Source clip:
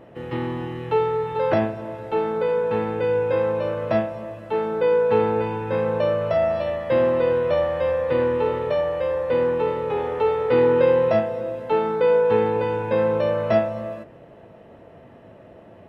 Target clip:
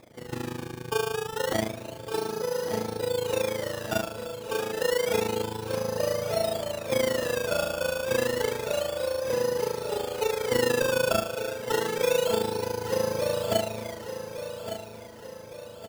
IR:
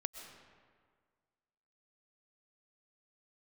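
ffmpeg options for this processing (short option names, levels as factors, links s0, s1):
-af "tremolo=f=27:d=0.857,acrusher=samples=15:mix=1:aa=0.000001:lfo=1:lforange=15:lforate=0.29,aecho=1:1:1161|2322|3483|4644|5805:0.316|0.152|0.0729|0.035|0.0168,volume=0.668"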